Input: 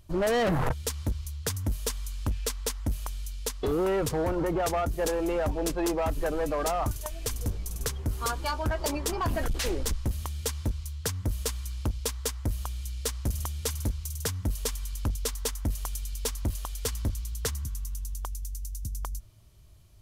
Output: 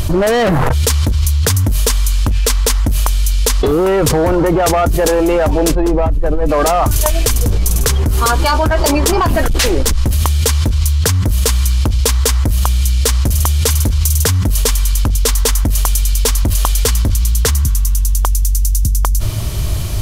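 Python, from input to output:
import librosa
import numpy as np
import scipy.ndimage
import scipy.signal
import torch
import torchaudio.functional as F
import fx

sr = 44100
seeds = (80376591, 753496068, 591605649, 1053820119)

y = fx.tilt_eq(x, sr, slope=-3.0, at=(5.75, 6.49))
y = fx.env_flatten(y, sr, amount_pct=100)
y = y * 10.0 ** (-1.5 / 20.0)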